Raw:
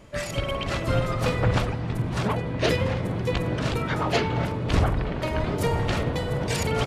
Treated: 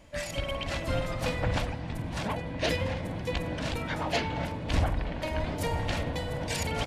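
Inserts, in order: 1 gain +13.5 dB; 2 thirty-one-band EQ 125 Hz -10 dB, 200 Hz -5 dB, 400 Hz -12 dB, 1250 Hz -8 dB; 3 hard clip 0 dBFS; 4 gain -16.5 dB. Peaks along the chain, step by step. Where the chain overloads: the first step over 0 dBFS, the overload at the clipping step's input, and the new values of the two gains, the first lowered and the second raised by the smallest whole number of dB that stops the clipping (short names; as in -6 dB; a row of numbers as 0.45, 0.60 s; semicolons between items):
+5.0, +3.0, 0.0, -16.5 dBFS; step 1, 3.0 dB; step 1 +10.5 dB, step 4 -13.5 dB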